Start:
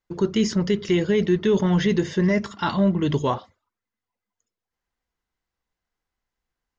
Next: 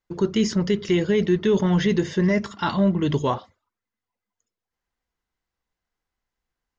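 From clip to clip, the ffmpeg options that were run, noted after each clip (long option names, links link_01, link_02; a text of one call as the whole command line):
ffmpeg -i in.wav -af anull out.wav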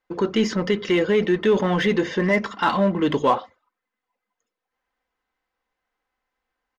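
ffmpeg -i in.wav -filter_complex "[0:a]bass=frequency=250:gain=-13,treble=frequency=4000:gain=-13,aecho=1:1:3.9:0.35,asplit=2[link_01][link_02];[link_02]volume=30dB,asoftclip=hard,volume=-30dB,volume=-8dB[link_03];[link_01][link_03]amix=inputs=2:normalize=0,volume=4.5dB" out.wav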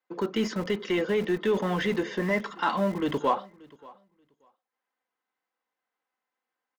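ffmpeg -i in.wav -filter_complex "[0:a]acrossover=split=150|510|1200[link_01][link_02][link_03][link_04];[link_01]acrusher=bits=5:mix=0:aa=0.000001[link_05];[link_03]crystalizer=i=6.5:c=0[link_06];[link_05][link_02][link_06][link_04]amix=inputs=4:normalize=0,aecho=1:1:582|1164:0.0668|0.0114,volume=-7dB" out.wav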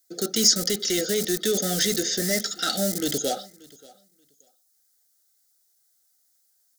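ffmpeg -i in.wav -af "aexciter=amount=12.8:drive=8.3:freq=4100,asuperstop=centerf=1000:order=20:qfactor=2.3" out.wav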